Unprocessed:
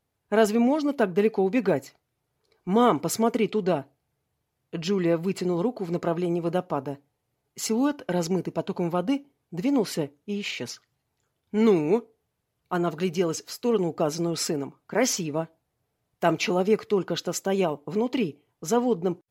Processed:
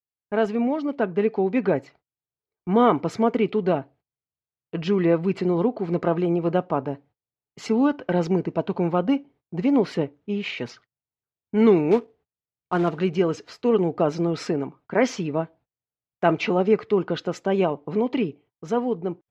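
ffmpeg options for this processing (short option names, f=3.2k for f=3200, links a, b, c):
-filter_complex "[0:a]asettb=1/sr,asplit=3[a][b][c];[a]atrim=end=11.914[d];[b]atrim=start=11.91:end=12.99,asetpts=PTS-STARTPTS,afade=t=in:d=0.004:c=qsin,afade=t=out:st=1.076:d=0.004:c=qsin,acrusher=bits=4:mode=log:mix=0:aa=0.000001[e];[c]atrim=start=12.986[f];[d][e]acrossfade=d=0.004:c1=hsin:c2=qsin[g];[g][f]acrossfade=d=0.004:c1=qsin:c2=hsin,dynaudnorm=f=300:g=9:m=6dB,lowpass=2.8k,agate=range=-26dB:threshold=-48dB:ratio=16:detection=peak,volume=-2dB"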